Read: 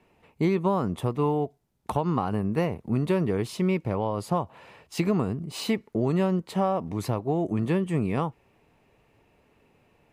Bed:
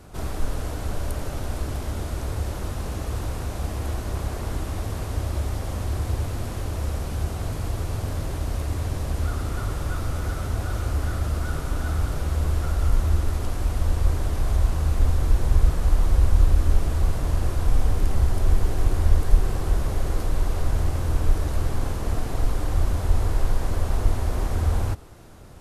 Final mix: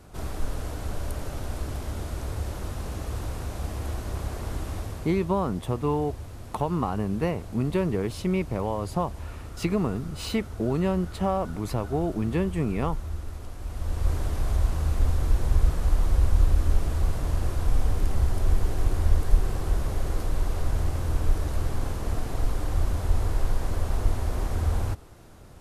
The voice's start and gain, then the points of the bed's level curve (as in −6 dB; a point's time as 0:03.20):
4.65 s, −1.0 dB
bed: 0:04.76 −3.5 dB
0:05.31 −12 dB
0:13.58 −12 dB
0:14.12 −3 dB